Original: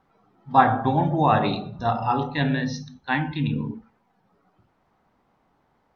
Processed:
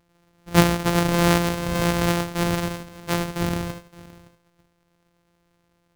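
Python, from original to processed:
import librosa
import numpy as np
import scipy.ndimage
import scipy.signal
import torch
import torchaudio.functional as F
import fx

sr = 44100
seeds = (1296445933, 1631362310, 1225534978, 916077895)

y = np.r_[np.sort(x[:len(x) // 256 * 256].reshape(-1, 256), axis=1).ravel(), x[len(x) // 256 * 256:]]
y = y + 10.0 ** (-20.0 / 20.0) * np.pad(y, (int(567 * sr / 1000.0), 0))[:len(y)]
y = fx.pre_swell(y, sr, db_per_s=30.0, at=(0.95, 2.25))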